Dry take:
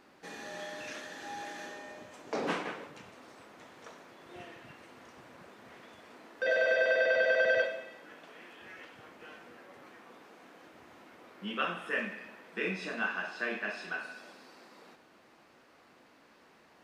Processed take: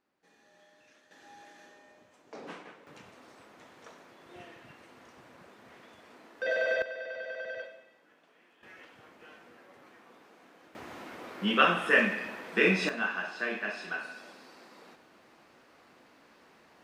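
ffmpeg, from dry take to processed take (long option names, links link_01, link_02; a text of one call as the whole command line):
ffmpeg -i in.wav -af "asetnsamples=nb_out_samples=441:pad=0,asendcmd='1.11 volume volume -11.5dB;2.87 volume volume -1.5dB;6.82 volume volume -12.5dB;8.63 volume volume -3dB;10.75 volume volume 10dB;12.89 volume volume 1.5dB',volume=-20dB" out.wav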